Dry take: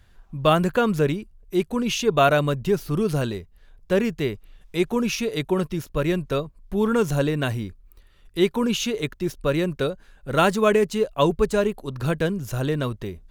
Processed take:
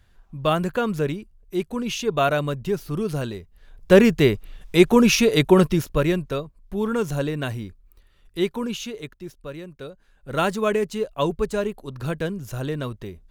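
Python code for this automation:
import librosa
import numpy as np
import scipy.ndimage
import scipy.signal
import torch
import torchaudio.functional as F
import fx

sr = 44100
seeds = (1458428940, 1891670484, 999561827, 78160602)

y = fx.gain(x, sr, db=fx.line((3.38, -3.0), (3.93, 8.0), (5.68, 8.0), (6.39, -3.0), (8.41, -3.0), (9.71, -15.0), (10.37, -3.5)))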